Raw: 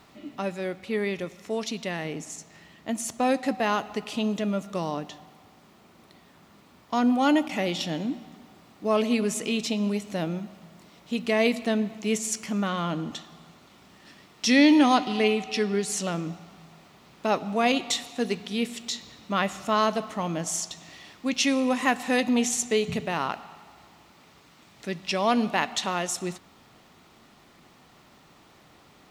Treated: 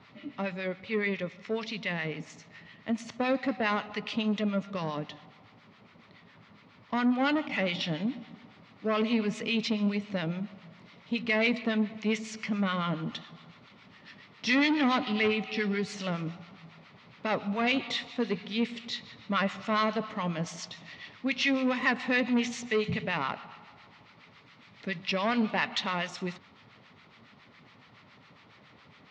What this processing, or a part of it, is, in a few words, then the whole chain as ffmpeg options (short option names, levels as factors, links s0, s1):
guitar amplifier with harmonic tremolo: -filter_complex "[0:a]acrossover=split=950[s0][s1];[s0]aeval=exprs='val(0)*(1-0.7/2+0.7/2*cos(2*PI*7.2*n/s))':c=same[s2];[s1]aeval=exprs='val(0)*(1-0.7/2-0.7/2*cos(2*PI*7.2*n/s))':c=same[s3];[s2][s3]amix=inputs=2:normalize=0,asoftclip=type=tanh:threshold=0.0794,highpass=100,equalizer=f=110:t=q:w=4:g=7,equalizer=f=340:t=q:w=4:g=-8,equalizer=f=730:t=q:w=4:g=-6,equalizer=f=2100:t=q:w=4:g=5,lowpass=f=4600:w=0.5412,lowpass=f=4600:w=1.3066,volume=1.41"